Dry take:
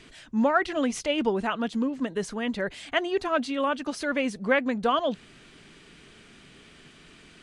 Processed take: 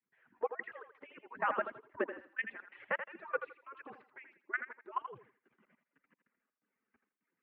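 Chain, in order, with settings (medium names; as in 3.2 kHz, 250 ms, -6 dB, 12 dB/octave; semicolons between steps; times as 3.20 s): harmonic-percussive separation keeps percussive; Doppler pass-by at 1.95 s, 10 m/s, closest 6.7 m; band-stop 790 Hz, Q 12; level held to a coarse grid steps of 18 dB; trance gate ".xxx.xx.xx.xxxx" 127 bpm -24 dB; on a send: thinning echo 82 ms, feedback 28%, high-pass 420 Hz, level -8.5 dB; on the sum: mistuned SSB -73 Hz 260–2200 Hz; trim +6 dB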